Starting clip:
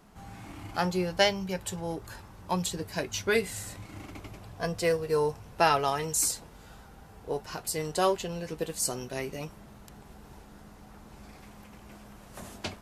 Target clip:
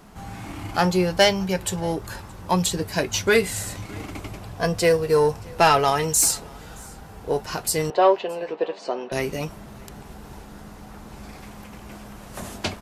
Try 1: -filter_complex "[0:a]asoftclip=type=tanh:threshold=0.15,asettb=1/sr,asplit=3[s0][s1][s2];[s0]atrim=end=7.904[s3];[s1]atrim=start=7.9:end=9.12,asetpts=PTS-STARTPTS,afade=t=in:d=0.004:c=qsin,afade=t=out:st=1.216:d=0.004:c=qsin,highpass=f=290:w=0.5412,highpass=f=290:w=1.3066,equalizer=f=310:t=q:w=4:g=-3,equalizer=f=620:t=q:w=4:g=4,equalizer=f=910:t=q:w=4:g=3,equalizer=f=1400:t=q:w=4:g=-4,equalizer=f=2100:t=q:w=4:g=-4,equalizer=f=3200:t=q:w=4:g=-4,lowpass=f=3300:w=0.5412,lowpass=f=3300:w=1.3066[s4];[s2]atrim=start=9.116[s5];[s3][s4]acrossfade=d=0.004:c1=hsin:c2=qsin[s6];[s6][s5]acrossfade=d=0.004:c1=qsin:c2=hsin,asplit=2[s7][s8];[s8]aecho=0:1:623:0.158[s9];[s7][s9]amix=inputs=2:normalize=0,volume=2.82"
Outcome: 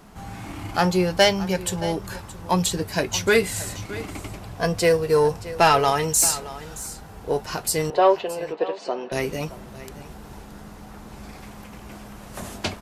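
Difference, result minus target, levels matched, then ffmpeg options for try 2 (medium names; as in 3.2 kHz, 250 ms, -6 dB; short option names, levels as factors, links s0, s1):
echo-to-direct +10 dB
-filter_complex "[0:a]asoftclip=type=tanh:threshold=0.15,asettb=1/sr,asplit=3[s0][s1][s2];[s0]atrim=end=7.904[s3];[s1]atrim=start=7.9:end=9.12,asetpts=PTS-STARTPTS,afade=t=in:d=0.004:c=qsin,afade=t=out:st=1.216:d=0.004:c=qsin,highpass=f=290:w=0.5412,highpass=f=290:w=1.3066,equalizer=f=310:t=q:w=4:g=-3,equalizer=f=620:t=q:w=4:g=4,equalizer=f=910:t=q:w=4:g=3,equalizer=f=1400:t=q:w=4:g=-4,equalizer=f=2100:t=q:w=4:g=-4,equalizer=f=3200:t=q:w=4:g=-4,lowpass=f=3300:w=0.5412,lowpass=f=3300:w=1.3066[s4];[s2]atrim=start=9.116[s5];[s3][s4]acrossfade=d=0.004:c1=hsin:c2=qsin[s6];[s6][s5]acrossfade=d=0.004:c1=qsin:c2=hsin,asplit=2[s7][s8];[s8]aecho=0:1:623:0.0501[s9];[s7][s9]amix=inputs=2:normalize=0,volume=2.82"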